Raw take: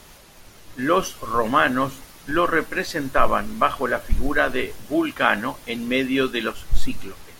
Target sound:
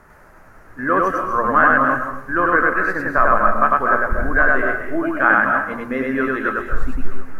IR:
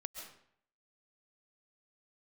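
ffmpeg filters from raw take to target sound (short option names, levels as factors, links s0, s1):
-filter_complex "[0:a]highshelf=f=2300:t=q:w=3:g=-13.5,asplit=2[s0][s1];[1:a]atrim=start_sample=2205,adelay=100[s2];[s1][s2]afir=irnorm=-1:irlink=0,volume=1.41[s3];[s0][s3]amix=inputs=2:normalize=0,volume=0.794"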